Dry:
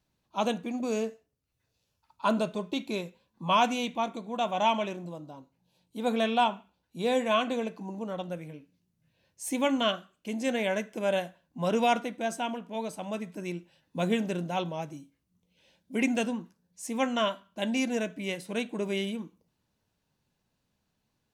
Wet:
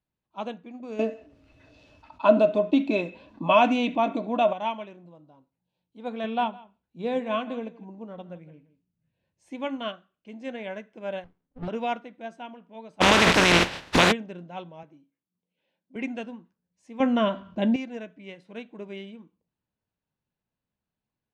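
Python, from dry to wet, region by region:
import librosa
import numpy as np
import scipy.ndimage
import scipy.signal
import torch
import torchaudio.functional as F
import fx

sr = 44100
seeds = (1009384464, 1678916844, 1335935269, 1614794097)

y = fx.chain(x, sr, fx.peak_eq(hz=150.0, db=-5.5, octaves=0.77),
    fx.small_body(hz=(290.0, 620.0, 2600.0), ring_ms=85, db=15),
    fx.env_flatten(amount_pct=50), at=(0.99, 4.53))
y = fx.chain(y, sr, fx.low_shelf(hz=450.0, db=5.5),
    fx.echo_single(ms=163, db=-15.0), at=(6.24, 9.5))
y = fx.chain(y, sr, fx.peak_eq(hz=270.0, db=14.0, octaves=0.31),
    fx.running_max(window=65), at=(11.24, 11.68))
y = fx.spec_flatten(y, sr, power=0.25, at=(13.0, 14.11), fade=0.02)
y = fx.env_flatten(y, sr, amount_pct=100, at=(13.0, 14.11), fade=0.02)
y = fx.chain(y, sr, fx.highpass(hz=190.0, slope=12),
    fx.high_shelf(hz=5600.0, db=-11.0), at=(14.83, 15.96))
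y = fx.chain(y, sr, fx.low_shelf(hz=470.0, db=12.0),
    fx.env_flatten(amount_pct=50), at=(17.0, 17.76))
y = scipy.signal.sosfilt(scipy.signal.butter(2, 3200.0, 'lowpass', fs=sr, output='sos'), y)
y = fx.upward_expand(y, sr, threshold_db=-35.0, expansion=1.5)
y = F.gain(torch.from_numpy(y), 1.0).numpy()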